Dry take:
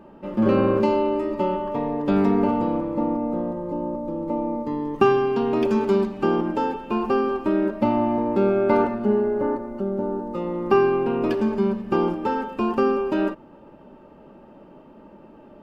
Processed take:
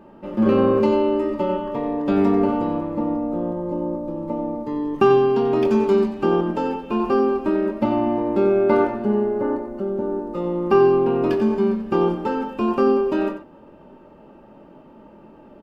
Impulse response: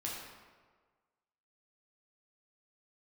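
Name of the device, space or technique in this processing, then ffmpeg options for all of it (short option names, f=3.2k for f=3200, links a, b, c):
slapback doubling: -filter_complex "[0:a]asplit=3[a][b][c];[b]adelay=23,volume=-8.5dB[d];[c]adelay=91,volume=-10dB[e];[a][d][e]amix=inputs=3:normalize=0"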